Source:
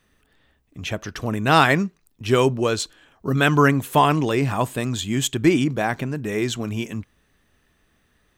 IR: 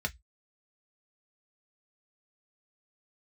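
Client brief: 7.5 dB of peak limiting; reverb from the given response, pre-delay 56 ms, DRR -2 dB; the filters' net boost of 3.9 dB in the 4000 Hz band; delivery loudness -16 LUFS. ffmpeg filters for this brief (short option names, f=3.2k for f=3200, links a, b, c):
-filter_complex "[0:a]equalizer=f=4k:t=o:g=5,alimiter=limit=-8.5dB:level=0:latency=1,asplit=2[a][b];[1:a]atrim=start_sample=2205,adelay=56[c];[b][c]afir=irnorm=-1:irlink=0,volume=-2.5dB[d];[a][d]amix=inputs=2:normalize=0,volume=2dB"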